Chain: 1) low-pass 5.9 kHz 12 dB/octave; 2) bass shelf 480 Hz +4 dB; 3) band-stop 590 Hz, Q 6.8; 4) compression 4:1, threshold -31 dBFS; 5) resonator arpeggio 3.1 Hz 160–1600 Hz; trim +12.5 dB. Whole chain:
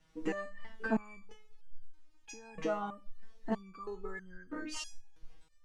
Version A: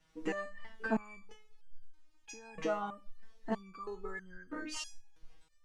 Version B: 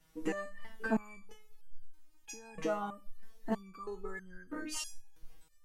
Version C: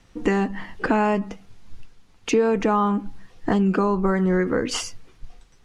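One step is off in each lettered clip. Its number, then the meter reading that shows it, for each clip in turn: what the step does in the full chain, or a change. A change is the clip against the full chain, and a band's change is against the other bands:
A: 2, 125 Hz band -2.5 dB; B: 1, 8 kHz band +4.5 dB; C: 5, 125 Hz band +6.5 dB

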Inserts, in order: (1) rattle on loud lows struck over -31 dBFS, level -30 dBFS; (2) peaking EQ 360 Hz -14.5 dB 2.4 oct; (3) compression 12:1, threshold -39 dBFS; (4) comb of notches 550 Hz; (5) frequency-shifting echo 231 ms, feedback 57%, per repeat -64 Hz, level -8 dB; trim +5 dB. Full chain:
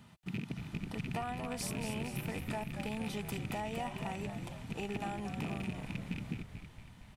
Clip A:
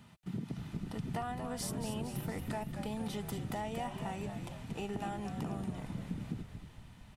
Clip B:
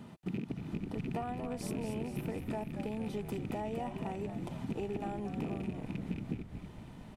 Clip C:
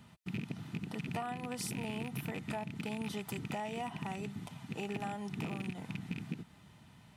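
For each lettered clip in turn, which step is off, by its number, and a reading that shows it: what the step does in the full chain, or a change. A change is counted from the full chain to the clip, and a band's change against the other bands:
1, 2 kHz band -5.0 dB; 2, 500 Hz band +7.0 dB; 5, echo-to-direct -6.5 dB to none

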